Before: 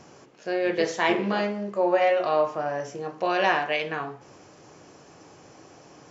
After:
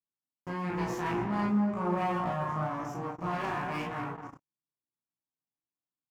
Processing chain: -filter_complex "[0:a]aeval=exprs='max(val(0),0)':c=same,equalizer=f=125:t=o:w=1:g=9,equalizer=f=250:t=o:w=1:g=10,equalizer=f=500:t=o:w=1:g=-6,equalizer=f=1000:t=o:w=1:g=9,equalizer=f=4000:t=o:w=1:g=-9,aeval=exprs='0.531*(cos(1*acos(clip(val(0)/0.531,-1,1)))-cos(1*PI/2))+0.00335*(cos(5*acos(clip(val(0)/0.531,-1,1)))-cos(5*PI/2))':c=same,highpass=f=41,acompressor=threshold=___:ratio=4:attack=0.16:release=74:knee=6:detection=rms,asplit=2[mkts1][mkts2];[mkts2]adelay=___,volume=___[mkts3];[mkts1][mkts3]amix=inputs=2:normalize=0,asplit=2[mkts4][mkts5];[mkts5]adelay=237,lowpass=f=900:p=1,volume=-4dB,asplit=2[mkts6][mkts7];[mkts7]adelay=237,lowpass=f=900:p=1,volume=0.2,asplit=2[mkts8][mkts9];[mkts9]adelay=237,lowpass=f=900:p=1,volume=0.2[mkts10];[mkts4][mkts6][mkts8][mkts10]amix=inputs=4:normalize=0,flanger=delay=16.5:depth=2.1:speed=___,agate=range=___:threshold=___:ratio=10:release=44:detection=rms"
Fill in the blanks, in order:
-25dB, 34, -2dB, 1, -56dB, -41dB